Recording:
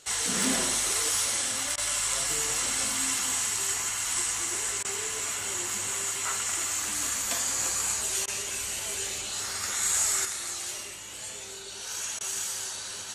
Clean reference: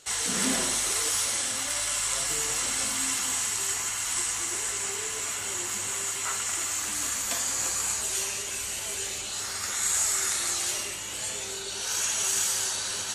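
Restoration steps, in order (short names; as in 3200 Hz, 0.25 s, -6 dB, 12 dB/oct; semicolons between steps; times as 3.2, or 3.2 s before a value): clip repair -15.5 dBFS; interpolate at 1.76/4.83/8.26/12.19, 16 ms; gain 0 dB, from 10.25 s +6 dB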